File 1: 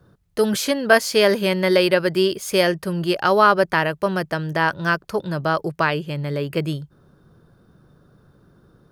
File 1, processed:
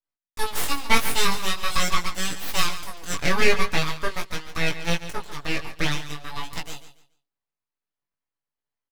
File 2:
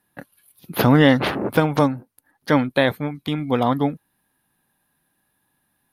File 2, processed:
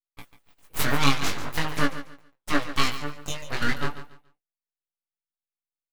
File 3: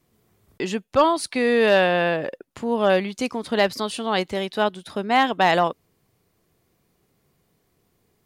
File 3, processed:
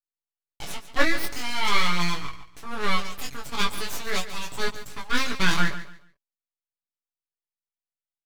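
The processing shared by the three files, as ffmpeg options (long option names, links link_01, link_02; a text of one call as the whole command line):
ffmpeg -i in.wav -af "highpass=740,bandreject=frequency=2000:width=5.4,agate=range=-33dB:threshold=-48dB:ratio=3:detection=peak,equalizer=frequency=1400:width_type=o:width=0.6:gain=-6,aecho=1:1:7:0.78,aeval=exprs='abs(val(0))':channel_layout=same,flanger=delay=16.5:depth=5.3:speed=0.44,aecho=1:1:142|284|426:0.224|0.056|0.014,volume=3.5dB" out.wav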